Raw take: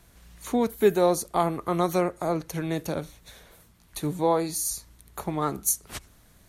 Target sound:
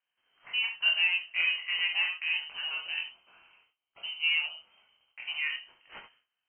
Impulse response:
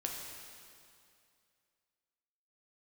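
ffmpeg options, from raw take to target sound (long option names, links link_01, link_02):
-filter_complex "[0:a]highpass=frequency=290:poles=1,agate=range=-20dB:threshold=-56dB:ratio=16:detection=peak,asettb=1/sr,asplit=3[link_01][link_02][link_03];[link_01]atrim=end=3.024[link_04];[link_02]atrim=start=3.02:end=5.22,asetpts=PTS-STARTPTS,afade=type=in:duration=0.004:curve=qsin,afade=type=out:start_time=2.196:duration=0.004:curve=qsin,equalizer=frequency=1400:width=3.2:gain=-10[link_05];[link_03]atrim=start=5.216[link_06];[link_04][link_05]acrossfade=duration=0.004:curve1=hsin:curve2=qsin[link_07];[link_07][link_06]acrossfade=duration=0.004:curve1=qsin:curve2=hsin,asoftclip=type=tanh:threshold=-11.5dB,flanger=delay=18.5:depth=5.9:speed=0.48[link_08];[1:a]atrim=start_sample=2205,atrim=end_sample=3969[link_09];[link_08][link_09]afir=irnorm=-1:irlink=0,lowpass=frequency=2700:width_type=q:width=0.5098,lowpass=frequency=2700:width_type=q:width=0.6013,lowpass=frequency=2700:width_type=q:width=0.9,lowpass=frequency=2700:width_type=q:width=2.563,afreqshift=-3200"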